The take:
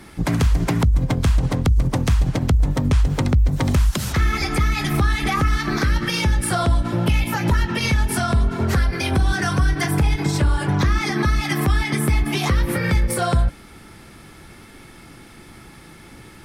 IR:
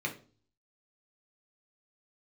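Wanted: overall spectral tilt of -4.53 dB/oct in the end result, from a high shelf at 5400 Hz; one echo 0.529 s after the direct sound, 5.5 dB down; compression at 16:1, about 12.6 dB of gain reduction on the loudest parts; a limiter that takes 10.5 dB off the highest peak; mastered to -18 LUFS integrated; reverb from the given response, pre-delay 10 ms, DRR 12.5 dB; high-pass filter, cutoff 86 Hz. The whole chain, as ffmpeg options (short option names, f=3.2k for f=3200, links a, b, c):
-filter_complex "[0:a]highpass=86,highshelf=f=5.4k:g=6.5,acompressor=threshold=-28dB:ratio=16,alimiter=level_in=0.5dB:limit=-24dB:level=0:latency=1,volume=-0.5dB,aecho=1:1:529:0.531,asplit=2[a][b];[1:a]atrim=start_sample=2205,adelay=10[c];[b][c]afir=irnorm=-1:irlink=0,volume=-17.5dB[d];[a][d]amix=inputs=2:normalize=0,volume=15.5dB"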